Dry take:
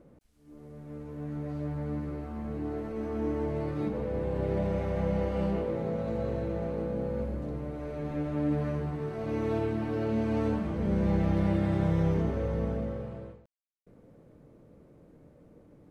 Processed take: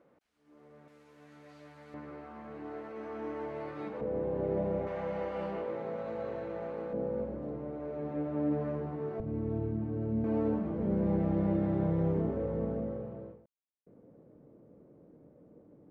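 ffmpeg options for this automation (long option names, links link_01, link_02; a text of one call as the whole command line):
ffmpeg -i in.wav -af "asetnsamples=nb_out_samples=441:pad=0,asendcmd='0.88 bandpass f 4100;1.94 bandpass f 1400;4.01 bandpass f 460;4.87 bandpass f 1200;6.93 bandpass f 500;9.2 bandpass f 120;10.24 bandpass f 360',bandpass=frequency=1500:width_type=q:width=0.61:csg=0" out.wav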